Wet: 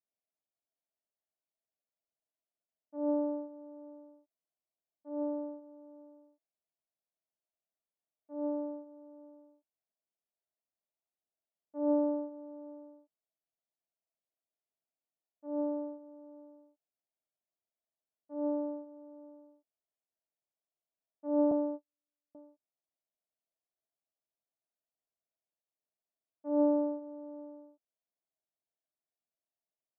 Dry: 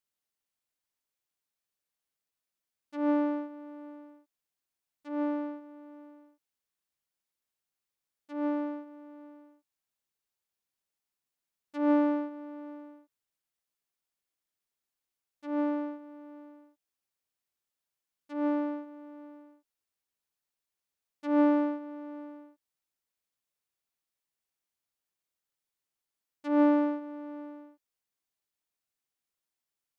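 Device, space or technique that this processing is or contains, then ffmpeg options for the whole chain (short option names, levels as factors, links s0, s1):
under water: -filter_complex "[0:a]highpass=140,asettb=1/sr,asplit=3[s0][s1][s2];[s0]atrim=end=21.514[s3];[s1]atrim=start=21.51:end=22.35,asetpts=PTS-STARTPTS,afade=t=in:d=0.004:c=qsin,afade=t=out:st=0.836:d=0.004:c=qsin,agate=range=0.00141:threshold=0.0224:ratio=16:detection=peak[s4];[s2]atrim=start=22.346[s5];[s3][s4]acrossfade=d=0.004:c1=hsin:c2=qsin[s6];[s6][s5]acrossfade=d=0.004:c1=qsin:c2=hsin,lowpass=f=880:w=0.5412,lowpass=f=880:w=1.3066,equalizer=f=650:t=o:w=0.26:g=12,volume=0.531"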